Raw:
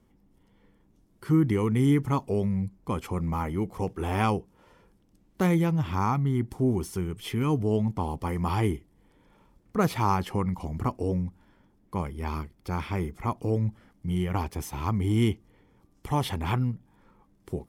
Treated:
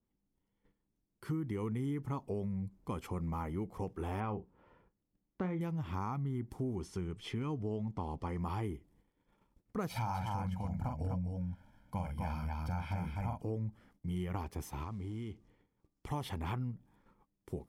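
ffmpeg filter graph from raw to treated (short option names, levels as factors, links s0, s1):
-filter_complex "[0:a]asettb=1/sr,asplit=3[s0][s1][s2];[s0]atrim=end=4.204[s3];[s1]atrim=start=4.2:end=5.61,asetpts=PTS-STARTPTS,afade=t=in:d=0.004:c=qsin,afade=t=out:st=1.406:d=0.004:c=qsin,lowpass=2200,asplit=2[s4][s5];[s5]adelay=38,volume=0.251[s6];[s4][s6]amix=inputs=2:normalize=0,atrim=end_sample=62181[s7];[s2]atrim=start=5.606[s8];[s3][s7]acrossfade=d=0.004:c1=hsin:c2=qsin[s9];[s9][s8]acrossfade=d=0.004:c1=qsin:c2=hsin,asettb=1/sr,asplit=3[s10][s11][s12];[s10]atrim=end=6.764[s13];[s11]atrim=start=6.76:end=8.4,asetpts=PTS-STARTPTS,afade=t=in:d=0.004:c=qsin,afade=t=out:st=1.636:d=0.004:c=qsin,lowpass=5800,highshelf=f=4500:g=5[s14];[s12]atrim=start=8.396[s15];[s13][s14]acrossfade=d=0.004:c1=hsin:c2=qsin[s16];[s16][s15]acrossfade=d=0.004:c1=qsin:c2=hsin,asettb=1/sr,asplit=3[s17][s18][s19];[s17]atrim=end=9.894[s20];[s18]atrim=start=9.89:end=13.42,asetpts=PTS-STARTPTS,afade=t=in:d=0.004:c=qsin,afade=t=out:st=3.526:d=0.004:c=qsin,aecho=1:1:1.3:0.92,atrim=end_sample=155673,aecho=1:1:44|251:0.596|0.668,atrim=end_sample=155673[s21];[s19]atrim=start=13.416[s22];[s20][s21]acrossfade=d=0.004:c1=hsin:c2=qsin[s23];[s23][s22]acrossfade=d=0.004:c1=qsin:c2=hsin,asettb=1/sr,asplit=3[s24][s25][s26];[s24]atrim=end=14.834[s27];[s25]atrim=start=14.83:end=16.07,asetpts=PTS-STARTPTS,afade=t=in:d=0.004:c=qsin,afade=t=out:st=1.236:d=0.004:c=qsin,acompressor=threshold=0.0282:ratio=16:attack=3.2:release=140:knee=1:detection=peak,acrusher=bits=7:mode=log:mix=0:aa=0.000001,lowpass=8000[s28];[s26]atrim=start=16.066[s29];[s27][s28]acrossfade=d=0.004:c1=hsin:c2=qsin[s30];[s30][s29]acrossfade=d=0.004:c1=qsin:c2=hsin,agate=range=0.2:threshold=0.00126:ratio=16:detection=peak,acompressor=threshold=0.0447:ratio=6,adynamicequalizer=threshold=0.00316:dfrequency=1800:dqfactor=0.7:tfrequency=1800:tqfactor=0.7:attack=5:release=100:ratio=0.375:range=2.5:mode=cutabove:tftype=highshelf,volume=0.473"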